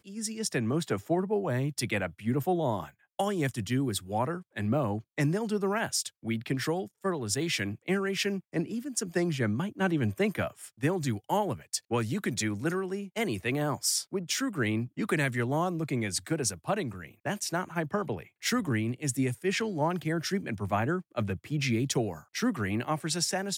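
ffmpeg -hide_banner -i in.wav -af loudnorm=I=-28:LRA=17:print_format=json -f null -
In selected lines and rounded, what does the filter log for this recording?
"input_i" : "-30.6",
"input_tp" : "-14.9",
"input_lra" : "0.7",
"input_thresh" : "-40.7",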